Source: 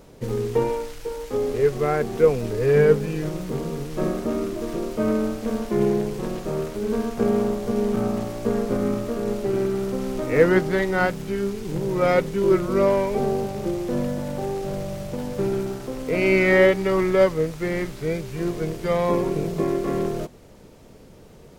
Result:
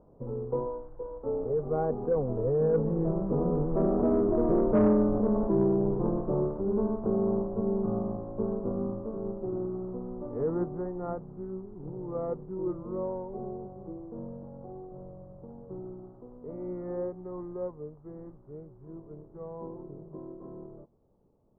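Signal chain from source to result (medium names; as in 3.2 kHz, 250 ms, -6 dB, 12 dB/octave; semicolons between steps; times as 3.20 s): Doppler pass-by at 4.60 s, 19 m/s, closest 8.3 m; steep low-pass 1.1 kHz 36 dB/octave; saturation -19 dBFS, distortion -17 dB; in parallel at 0 dB: compressor with a negative ratio -37 dBFS, ratio -1; on the sum: trim +3 dB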